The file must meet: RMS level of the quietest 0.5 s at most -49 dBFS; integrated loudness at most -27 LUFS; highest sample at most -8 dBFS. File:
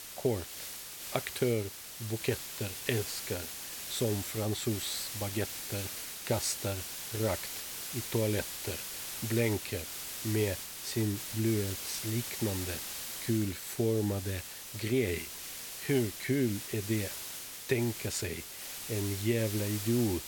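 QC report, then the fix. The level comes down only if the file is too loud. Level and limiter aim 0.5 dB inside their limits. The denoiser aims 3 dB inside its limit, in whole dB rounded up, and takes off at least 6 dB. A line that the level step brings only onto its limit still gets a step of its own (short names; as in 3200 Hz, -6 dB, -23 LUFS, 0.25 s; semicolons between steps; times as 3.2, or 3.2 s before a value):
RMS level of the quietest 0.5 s -44 dBFS: fail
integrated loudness -33.5 LUFS: OK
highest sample -12.5 dBFS: OK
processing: denoiser 8 dB, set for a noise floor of -44 dBFS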